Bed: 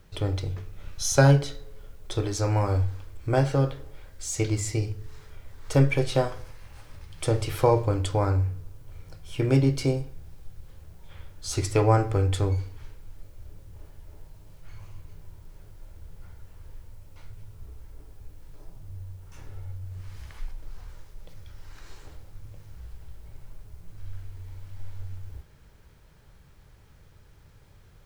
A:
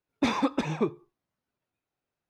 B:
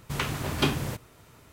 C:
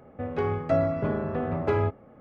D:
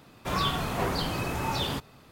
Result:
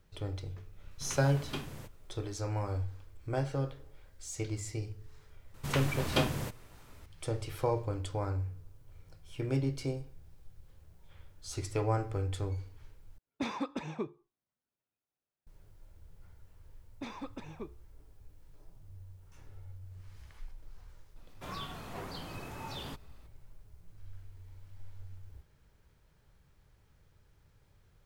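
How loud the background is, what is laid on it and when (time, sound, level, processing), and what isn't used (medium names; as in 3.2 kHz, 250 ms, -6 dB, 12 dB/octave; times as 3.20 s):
bed -10.5 dB
0.91 s: add B -14.5 dB
5.54 s: add B -4.5 dB
13.18 s: replace with A -10 dB
16.79 s: add A -17 dB
21.16 s: add D -13.5 dB + gain riding within 4 dB
not used: C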